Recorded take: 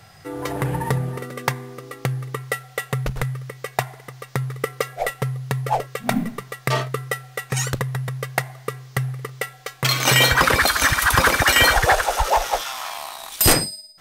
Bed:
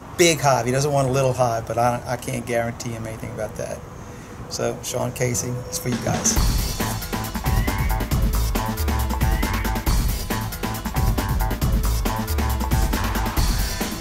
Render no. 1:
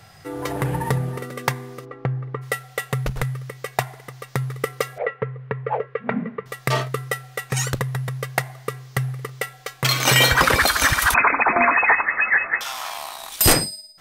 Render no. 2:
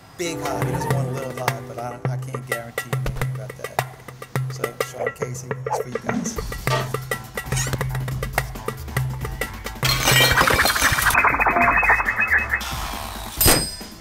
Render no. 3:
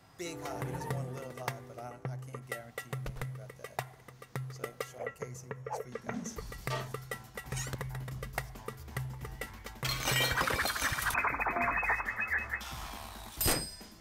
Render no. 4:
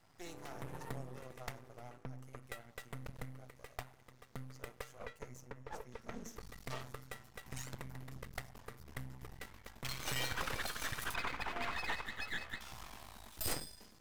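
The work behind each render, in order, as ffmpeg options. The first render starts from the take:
-filter_complex "[0:a]asplit=3[a][b][c];[a]afade=t=out:st=1.84:d=0.02[d];[b]lowpass=1.5k,afade=t=in:st=1.84:d=0.02,afade=t=out:st=2.41:d=0.02[e];[c]afade=t=in:st=2.41:d=0.02[f];[d][e][f]amix=inputs=3:normalize=0,asettb=1/sr,asplit=3[g][h][i];[g]atrim=end=4.984[j];[h]atrim=start=4.98:end=6.46,asetpts=PTS-STARTPTS,afade=t=in:d=0.004:c=qsin,afade=t=out:st=1.476:d=0.004:c=qsin,highpass=100,equalizer=f=140:t=q:w=4:g=-7,equalizer=f=300:t=q:w=4:g=-10,equalizer=f=460:t=q:w=4:g=9,equalizer=f=730:t=q:w=4:g=-9,lowpass=f=2.2k:w=0.5412,lowpass=f=2.2k:w=1.3066[k];[i]atrim=start=6.456[l];[j][k]acrossfade=d=0.004:c1=hsin:c2=qsin[m];[m][l]acrossfade=d=0.004:c1=qsin:c2=hsin,asettb=1/sr,asplit=3[n][o][p];[n]atrim=end=11.144[q];[o]atrim=start=11.14:end=12.61,asetpts=PTS-STARTPTS,afade=t=in:d=0.004:c=qsin,afade=t=out:st=1.466:d=0.004:c=qsin,lowpass=f=2.2k:t=q:w=0.5098,lowpass=f=2.2k:t=q:w=0.6013,lowpass=f=2.2k:t=q:w=0.9,lowpass=f=2.2k:t=q:w=2.563,afreqshift=-2600[r];[p]atrim=start=12.606[s];[q][r]acrossfade=d=0.004:c1=hsin:c2=qsin[t];[t][s]acrossfade=d=0.004:c1=qsin:c2=hsin"
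-filter_complex "[1:a]volume=-11.5dB[a];[0:a][a]amix=inputs=2:normalize=0"
-af "volume=-14.5dB"
-af "flanger=delay=6.5:depth=3.3:regen=-86:speed=0.17:shape=triangular,aeval=exprs='max(val(0),0)':c=same"

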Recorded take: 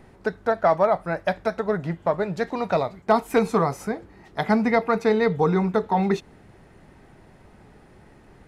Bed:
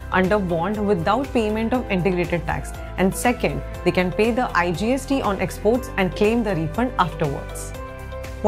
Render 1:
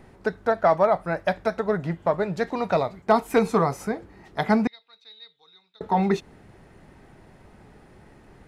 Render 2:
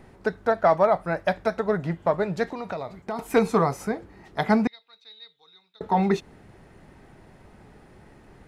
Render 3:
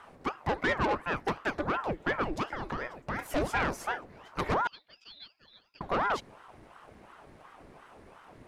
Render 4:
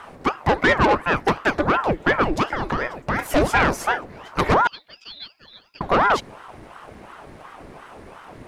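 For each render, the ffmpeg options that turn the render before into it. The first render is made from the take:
-filter_complex "[0:a]asettb=1/sr,asplit=3[a][b][c];[a]atrim=end=4.674[d];[b]atrim=start=4.67:end=5.81,asetpts=PTS-STARTPTS,afade=t=in:d=0.004:c=qsin,afade=t=out:st=1.136:d=0.004:c=qsin,bandpass=f=3.8k:t=q:w=17[e];[c]atrim=start=5.806[f];[d][e]acrossfade=d=0.004:c1=hsin:c2=qsin[g];[g][f]acrossfade=d=0.004:c1=qsin:c2=hsin"
-filter_complex "[0:a]asettb=1/sr,asplit=3[a][b][c];[a]atrim=end=2.514[d];[b]atrim=start=2.51:end=3.19,asetpts=PTS-STARTPTS,afade=t=in:d=0.004:c=qsin,afade=t=out:st=0.676:d=0.004:c=qsin,acompressor=threshold=-29dB:ratio=4:attack=3.2:release=140:knee=1:detection=peak[e];[c]atrim=start=3.186[f];[d][e]acrossfade=d=0.004:c1=hsin:c2=qsin[g];[g][f]acrossfade=d=0.004:c1=qsin:c2=hsin"
-af "asoftclip=type=tanh:threshold=-21.5dB,aeval=exprs='val(0)*sin(2*PI*680*n/s+680*0.8/2.8*sin(2*PI*2.8*n/s))':c=same"
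-af "volume=11.5dB"

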